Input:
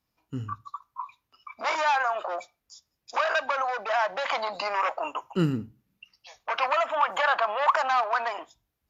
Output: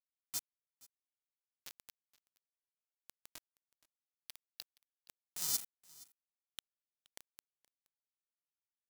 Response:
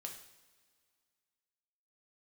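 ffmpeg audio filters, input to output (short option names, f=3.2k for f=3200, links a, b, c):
-filter_complex "[0:a]asplit=3[a][b][c];[a]bandpass=f=270:t=q:w=8,volume=0dB[d];[b]bandpass=f=2.29k:t=q:w=8,volume=-6dB[e];[c]bandpass=f=3.01k:t=q:w=8,volume=-9dB[f];[d][e][f]amix=inputs=3:normalize=0,acrossover=split=410[g][h];[g]acrusher=samples=40:mix=1:aa=0.000001[i];[i][h]amix=inputs=2:normalize=0,firequalizer=gain_entry='entry(120,0);entry(430,-17);entry(650,2);entry(1000,-26);entry(2300,-27);entry(3700,-1);entry(5300,6)':delay=0.05:min_phase=1,acrossover=split=130|3000[j][k][l];[k]acompressor=threshold=-59dB:ratio=10[m];[j][m][l]amix=inputs=3:normalize=0,tiltshelf=f=1.1k:g=-4.5,acrusher=bits=6:mix=0:aa=0.000001,acompressor=mode=upward:threshold=-50dB:ratio=2.5,asplit=2[n][o];[o]aecho=0:1:472:0.075[p];[n][p]amix=inputs=2:normalize=0,volume=5dB"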